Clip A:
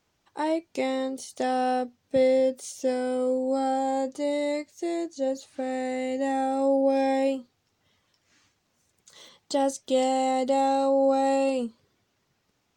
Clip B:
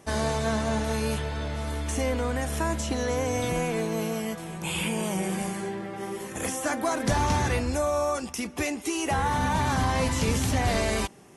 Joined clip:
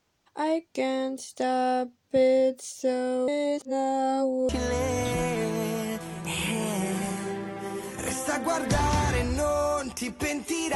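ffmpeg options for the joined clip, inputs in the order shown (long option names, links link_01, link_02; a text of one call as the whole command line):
ffmpeg -i cue0.wav -i cue1.wav -filter_complex "[0:a]apad=whole_dur=10.75,atrim=end=10.75,asplit=2[link_01][link_02];[link_01]atrim=end=3.282[link_03];[link_02]atrim=start=3.278:end=4.492,asetpts=PTS-STARTPTS,areverse[link_04];[1:a]atrim=start=2.858:end=9.12[link_05];[link_03][link_04]acrossfade=duration=0.004:curve1=hsin:curve2=hsin[link_06];[link_06][link_05]acrossfade=duration=0.004:curve1=hsin:curve2=hsin" out.wav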